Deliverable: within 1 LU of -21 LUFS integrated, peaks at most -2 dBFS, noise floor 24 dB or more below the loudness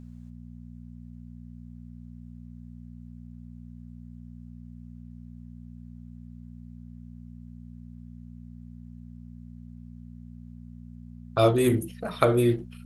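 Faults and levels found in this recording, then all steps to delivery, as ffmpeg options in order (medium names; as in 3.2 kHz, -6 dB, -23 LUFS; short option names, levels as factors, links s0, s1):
hum 60 Hz; highest harmonic 240 Hz; hum level -41 dBFS; loudness -24.0 LUFS; peak level -2.5 dBFS; loudness target -21.0 LUFS
-> -af "bandreject=f=60:t=h:w=4,bandreject=f=120:t=h:w=4,bandreject=f=180:t=h:w=4,bandreject=f=240:t=h:w=4"
-af "volume=1.41,alimiter=limit=0.794:level=0:latency=1"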